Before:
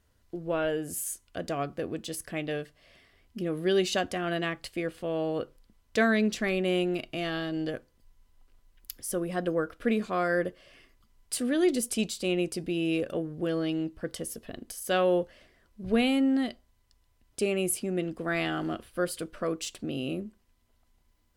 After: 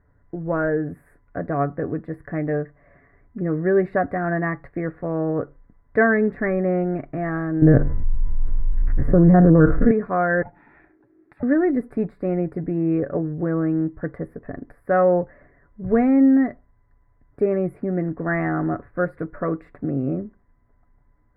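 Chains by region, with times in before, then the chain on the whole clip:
7.62–9.91 s: spectrogram pixelated in time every 50 ms + RIAA curve playback + level flattener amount 70%
10.42–11.43 s: compression 4:1, threshold -43 dBFS + peaking EQ 3.2 kHz +13 dB 0.85 oct + ring modulator 340 Hz
whole clip: elliptic low-pass 1.9 kHz, stop band 40 dB; peaking EQ 89 Hz +5.5 dB 2.6 oct; comb 7 ms, depth 40%; trim +6.5 dB

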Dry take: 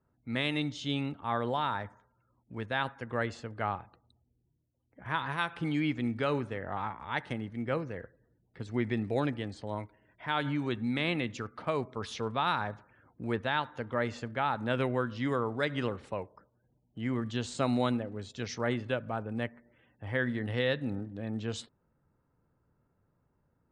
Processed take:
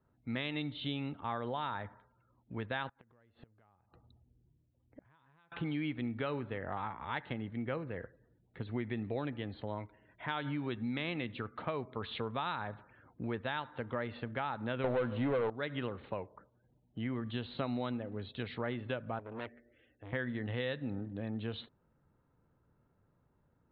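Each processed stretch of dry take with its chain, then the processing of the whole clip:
2.89–5.52 s: tilt EQ -1.5 dB/octave + compression 4:1, threshold -42 dBFS + inverted gate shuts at -39 dBFS, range -24 dB
14.84–15.50 s: low-pass 1.4 kHz 6 dB/octave + high-order bell 650 Hz +8 dB 1.1 oct + waveshaping leveller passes 3
19.19–20.13 s: static phaser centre 400 Hz, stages 4 + de-hum 374.1 Hz, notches 4 + transformer saturation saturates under 1.8 kHz
whole clip: steep low-pass 4.1 kHz 96 dB/octave; compression 3:1, threshold -36 dBFS; trim +1 dB

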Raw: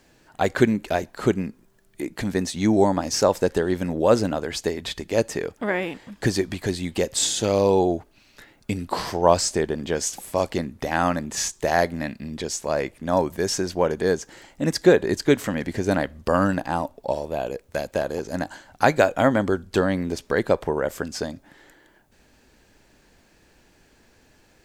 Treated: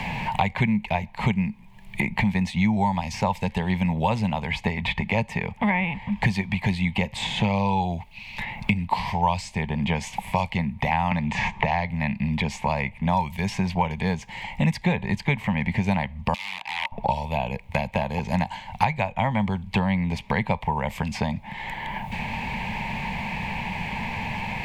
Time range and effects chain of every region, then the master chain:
11.11–11.90 s: distance through air 97 m + three bands compressed up and down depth 100%
16.34–16.92 s: compression 20:1, threshold -21 dBFS + integer overflow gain 23 dB + band-pass filter 4.9 kHz, Q 0.86
whole clip: FFT filter 210 Hz 0 dB, 300 Hz -25 dB, 650 Hz -11 dB, 920 Hz +5 dB, 1.4 kHz -22 dB, 2.2 kHz +5 dB, 5.8 kHz -19 dB; three bands compressed up and down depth 100%; trim +4.5 dB

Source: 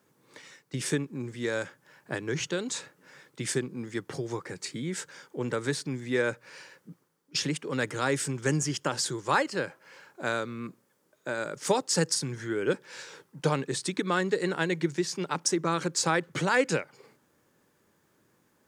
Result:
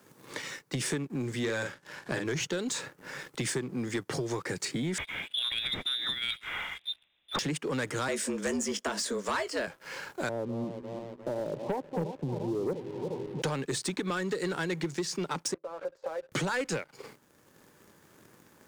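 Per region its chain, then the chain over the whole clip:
1.39–2.26 s: low-pass 8.3 kHz + doubling 44 ms -6 dB
4.98–7.39 s: frequency inversion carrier 3.8 kHz + compressor with a negative ratio -31 dBFS, ratio -0.5
8.08–9.67 s: doubling 18 ms -11.5 dB + frequency shift +90 Hz
10.29–13.42 s: backward echo that repeats 175 ms, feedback 72%, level -12.5 dB + steep low-pass 1 kHz 72 dB/octave + tremolo triangle 1.8 Hz, depth 35%
15.54–16.32 s: compression 4:1, threshold -31 dBFS + ladder band-pass 600 Hz, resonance 75% + doubling 13 ms -9.5 dB
whole clip: compression 2.5:1, threshold -38 dBFS; waveshaping leveller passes 2; three bands compressed up and down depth 40%

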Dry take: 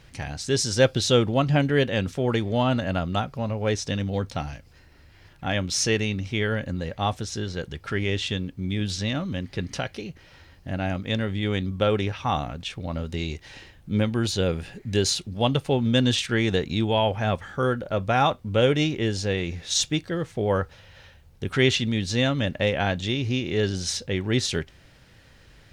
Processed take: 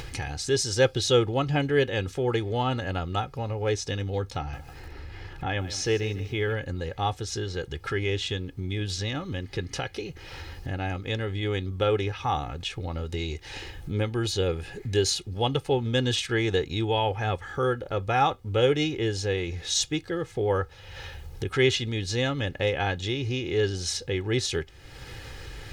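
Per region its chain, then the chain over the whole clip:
4.38–6.53 s: low-pass 2.9 kHz 6 dB/octave + bit-crushed delay 150 ms, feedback 35%, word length 8-bit, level -14.5 dB
whole clip: comb 2.4 ms, depth 61%; upward compressor, threshold -23 dBFS; trim -3.5 dB

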